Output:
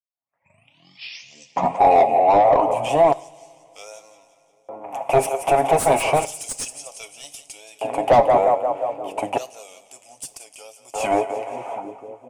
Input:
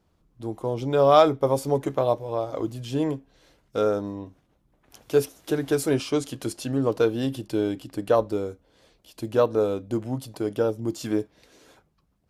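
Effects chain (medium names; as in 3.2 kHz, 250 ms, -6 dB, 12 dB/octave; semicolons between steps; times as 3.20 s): tape start-up on the opening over 2.78 s; in parallel at 0 dB: compression, threshold -30 dBFS, peak gain reduction 15 dB; on the sum: wow and flutter 130 cents; FFT filter 140 Hz 0 dB, 390 Hz -20 dB, 680 Hz -3 dB, 1.6 kHz -27 dB, 2.4 kHz -6 dB, 4.1 kHz -25 dB, 8.7 kHz +12 dB; level-controlled noise filter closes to 2.1 kHz, open at -13 dBFS; on a send: two-band feedback delay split 390 Hz, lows 719 ms, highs 175 ms, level -13 dB; on the sum: LFO high-pass square 0.32 Hz 870–5400 Hz; overdrive pedal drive 36 dB, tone 5.1 kHz, clips at -5.5 dBFS; tilt shelf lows +9 dB, about 940 Hz; comb 7.3 ms, depth 34%; two-slope reverb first 0.53 s, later 3.8 s, from -20 dB, DRR 16 dB; saturation -4.5 dBFS, distortion -23 dB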